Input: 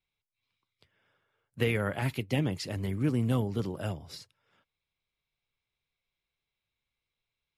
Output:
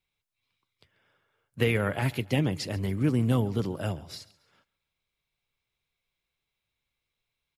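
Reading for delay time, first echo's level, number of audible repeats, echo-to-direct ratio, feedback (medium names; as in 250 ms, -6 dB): 138 ms, -21.0 dB, 2, -20.5 dB, 39%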